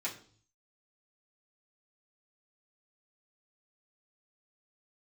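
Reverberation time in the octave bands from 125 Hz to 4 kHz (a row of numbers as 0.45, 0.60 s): 0.85, 0.60, 0.50, 0.45, 0.40, 0.55 s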